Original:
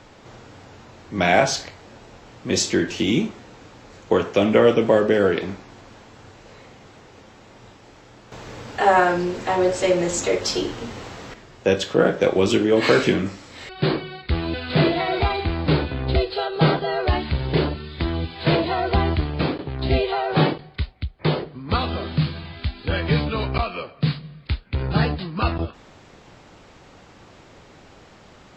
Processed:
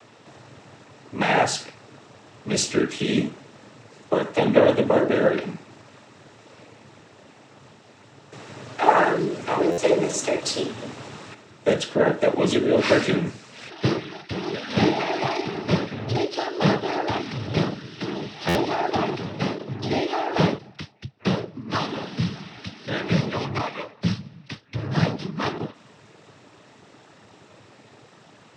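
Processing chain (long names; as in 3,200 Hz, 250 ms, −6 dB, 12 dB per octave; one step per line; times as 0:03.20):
cochlear-implant simulation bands 12
buffer that repeats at 0:09.71/0:18.48, samples 512, times 5
level −1.5 dB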